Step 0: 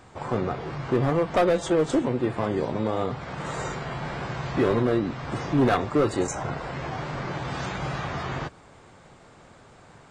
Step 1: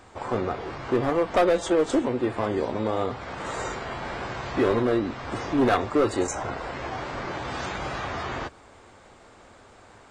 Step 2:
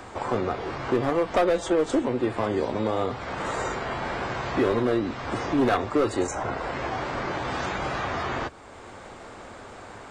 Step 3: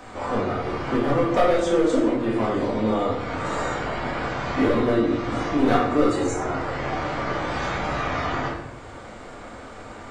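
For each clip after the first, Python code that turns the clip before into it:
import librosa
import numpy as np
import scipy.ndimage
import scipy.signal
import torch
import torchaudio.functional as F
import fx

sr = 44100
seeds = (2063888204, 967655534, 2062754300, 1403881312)

y1 = fx.peak_eq(x, sr, hz=150.0, db=-13.5, octaves=0.53)
y1 = y1 * librosa.db_to_amplitude(1.0)
y2 = fx.band_squash(y1, sr, depth_pct=40)
y3 = fx.room_shoebox(y2, sr, seeds[0], volume_m3=310.0, walls='mixed', distance_m=1.9)
y3 = y3 * librosa.db_to_amplitude(-3.5)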